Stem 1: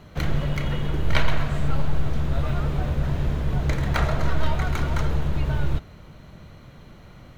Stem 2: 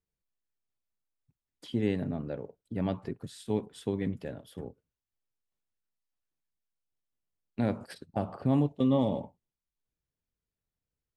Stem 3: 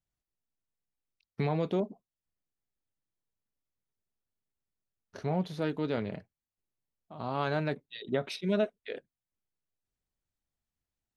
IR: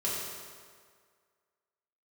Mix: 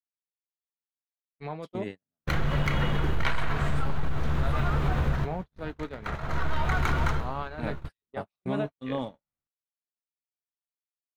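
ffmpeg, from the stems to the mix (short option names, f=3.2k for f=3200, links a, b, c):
-filter_complex "[0:a]bandreject=f=600:w=12,acontrast=88,adelay=2100,volume=-4.5dB[a];[1:a]highshelf=f=2.2k:g=8,volume=-7.5dB[b];[2:a]alimiter=limit=-21.5dB:level=0:latency=1:release=37,volume=-3.5dB,asplit=2[c][d];[d]apad=whole_len=417642[e];[a][e]sidechaincompress=threshold=-47dB:ratio=16:attack=16:release=570[f];[f][b][c]amix=inputs=3:normalize=0,equalizer=f=1.3k:t=o:w=2:g=7,agate=range=-55dB:threshold=-30dB:ratio=16:detection=peak,acompressor=threshold=-21dB:ratio=6"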